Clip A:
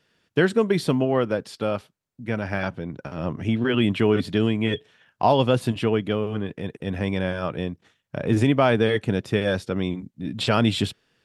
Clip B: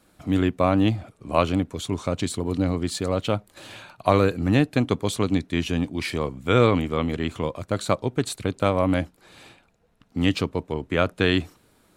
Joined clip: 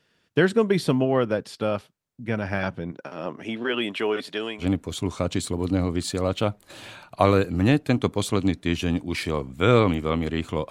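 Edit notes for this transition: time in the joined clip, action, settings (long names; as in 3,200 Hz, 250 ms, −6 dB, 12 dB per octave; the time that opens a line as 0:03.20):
clip A
0:02.91–0:04.66: high-pass filter 260 Hz → 620 Hz
0:04.62: continue with clip B from 0:01.49, crossfade 0.08 s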